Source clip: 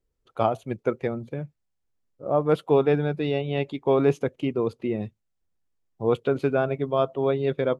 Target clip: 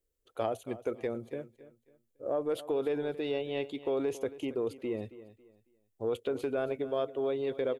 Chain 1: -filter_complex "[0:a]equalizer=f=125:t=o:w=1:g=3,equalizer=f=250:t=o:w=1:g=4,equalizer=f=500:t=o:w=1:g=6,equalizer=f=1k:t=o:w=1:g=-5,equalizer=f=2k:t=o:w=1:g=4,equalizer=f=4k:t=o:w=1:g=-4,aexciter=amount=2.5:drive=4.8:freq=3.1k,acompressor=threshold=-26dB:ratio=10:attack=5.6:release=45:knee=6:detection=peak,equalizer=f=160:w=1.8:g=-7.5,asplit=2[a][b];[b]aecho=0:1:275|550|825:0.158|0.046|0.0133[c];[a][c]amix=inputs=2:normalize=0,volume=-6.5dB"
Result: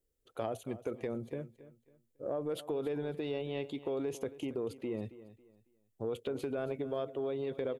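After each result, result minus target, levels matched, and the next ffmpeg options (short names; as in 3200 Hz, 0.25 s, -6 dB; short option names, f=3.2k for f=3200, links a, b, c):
125 Hz band +6.0 dB; compressor: peak gain reduction +6 dB
-filter_complex "[0:a]equalizer=f=125:t=o:w=1:g=3,equalizer=f=250:t=o:w=1:g=4,equalizer=f=500:t=o:w=1:g=6,equalizer=f=1k:t=o:w=1:g=-5,equalizer=f=2k:t=o:w=1:g=4,equalizer=f=4k:t=o:w=1:g=-4,aexciter=amount=2.5:drive=4.8:freq=3.1k,acompressor=threshold=-26dB:ratio=10:attack=5.6:release=45:knee=6:detection=peak,equalizer=f=160:w=1.8:g=-17,asplit=2[a][b];[b]aecho=0:1:275|550|825:0.158|0.046|0.0133[c];[a][c]amix=inputs=2:normalize=0,volume=-6.5dB"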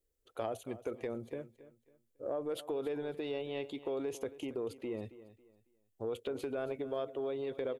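compressor: peak gain reduction +6 dB
-filter_complex "[0:a]equalizer=f=125:t=o:w=1:g=3,equalizer=f=250:t=o:w=1:g=4,equalizer=f=500:t=o:w=1:g=6,equalizer=f=1k:t=o:w=1:g=-5,equalizer=f=2k:t=o:w=1:g=4,equalizer=f=4k:t=o:w=1:g=-4,aexciter=amount=2.5:drive=4.8:freq=3.1k,acompressor=threshold=-19.5dB:ratio=10:attack=5.6:release=45:knee=6:detection=peak,equalizer=f=160:w=1.8:g=-17,asplit=2[a][b];[b]aecho=0:1:275|550|825:0.158|0.046|0.0133[c];[a][c]amix=inputs=2:normalize=0,volume=-6.5dB"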